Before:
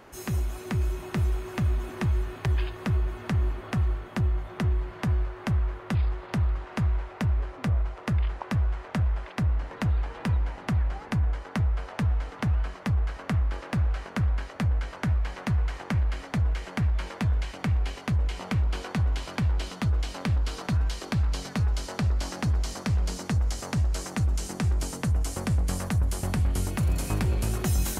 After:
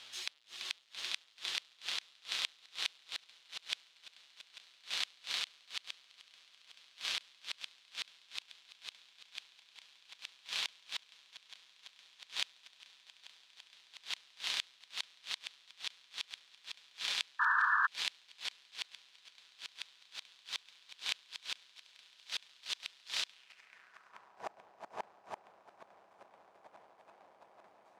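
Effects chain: half-waves squared off; weighting filter A; reverb removal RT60 0.85 s; high shelf 2900 Hz +8 dB; swelling echo 0.168 s, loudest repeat 5, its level -7 dB; buzz 120 Hz, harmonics 28, -46 dBFS -6 dB/oct; flipped gate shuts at -14 dBFS, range -29 dB; painted sound noise, 17.39–17.87, 900–1800 Hz -16 dBFS; band-pass sweep 3600 Hz -> 740 Hz, 23.28–24.47; gain +1.5 dB

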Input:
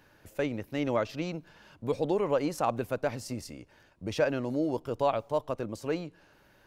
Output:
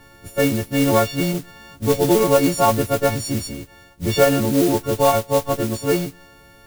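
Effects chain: frequency quantiser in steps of 4 st; tilt -2.5 dB/oct; modulation noise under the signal 13 dB; gain +8.5 dB

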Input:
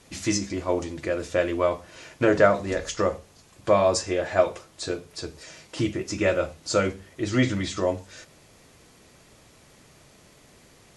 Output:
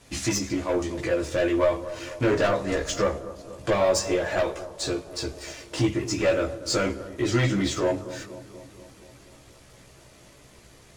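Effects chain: in parallel at -1 dB: compressor, threshold -35 dBFS, peak gain reduction 21 dB; on the sum: sample leveller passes 1; soft clip -14.5 dBFS, distortion -12 dB; chorus voices 6, 0.57 Hz, delay 16 ms, depth 1.8 ms; analogue delay 0.239 s, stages 2048, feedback 65%, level -15 dB; on a send at -20 dB: reverb, pre-delay 3 ms

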